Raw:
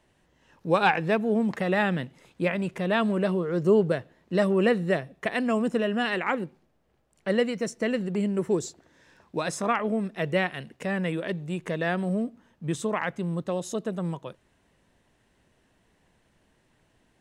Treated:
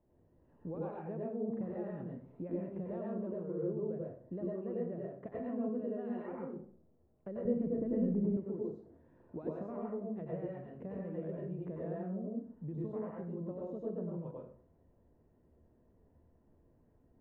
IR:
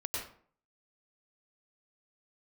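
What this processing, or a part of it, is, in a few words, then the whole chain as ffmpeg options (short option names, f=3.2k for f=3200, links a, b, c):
television next door: -filter_complex "[0:a]acompressor=threshold=-34dB:ratio=6,lowpass=560[a];[1:a]atrim=start_sample=2205[b];[a][b]afir=irnorm=-1:irlink=0,asettb=1/sr,asplit=3[c][d][e];[c]atrim=end=7.454[f];[d]atrim=start=7.45:end=8.37,asetpts=PTS-STARTPTS,afade=t=in:d=0.004:c=qsin,afade=t=out:st=0.916:d=0.004:c=qsin,aemphasis=mode=reproduction:type=riaa[g];[e]atrim=start=8.366[h];[f][g]acrossfade=d=0.004:c1=hsin:c2=qsin[i];[i][h]acrossfade=d=0.004:c1=qsin:c2=hsin,volume=-3dB"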